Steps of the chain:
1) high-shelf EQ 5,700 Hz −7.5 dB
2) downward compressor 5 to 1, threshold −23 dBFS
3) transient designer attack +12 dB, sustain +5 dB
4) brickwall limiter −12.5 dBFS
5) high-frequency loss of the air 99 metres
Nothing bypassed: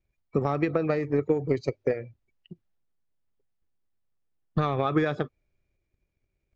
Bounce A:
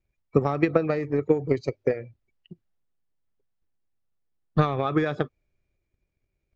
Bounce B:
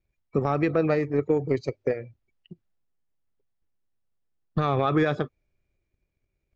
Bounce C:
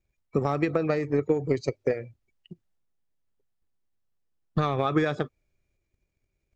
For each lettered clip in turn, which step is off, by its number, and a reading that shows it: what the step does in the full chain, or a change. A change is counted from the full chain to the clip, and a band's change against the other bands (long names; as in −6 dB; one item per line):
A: 4, change in crest factor +5.5 dB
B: 2, average gain reduction 2.5 dB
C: 5, 4 kHz band +2.5 dB